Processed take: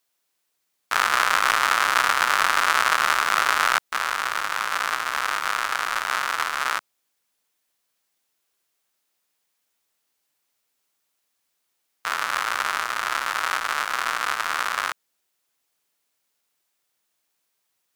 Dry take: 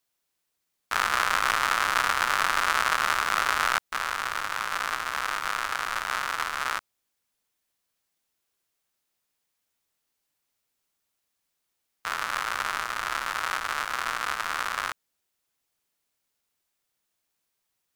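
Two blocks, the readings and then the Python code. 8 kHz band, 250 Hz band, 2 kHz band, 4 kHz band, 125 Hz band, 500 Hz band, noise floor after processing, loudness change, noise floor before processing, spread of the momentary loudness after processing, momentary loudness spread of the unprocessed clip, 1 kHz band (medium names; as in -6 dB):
+4.5 dB, +2.0 dB, +4.5 dB, +4.5 dB, no reading, +3.5 dB, -75 dBFS, +4.5 dB, -80 dBFS, 7 LU, 7 LU, +4.5 dB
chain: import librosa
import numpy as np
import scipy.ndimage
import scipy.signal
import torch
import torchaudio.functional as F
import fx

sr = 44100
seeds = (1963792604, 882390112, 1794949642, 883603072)

y = fx.low_shelf(x, sr, hz=140.0, db=-12.0)
y = F.gain(torch.from_numpy(y), 4.5).numpy()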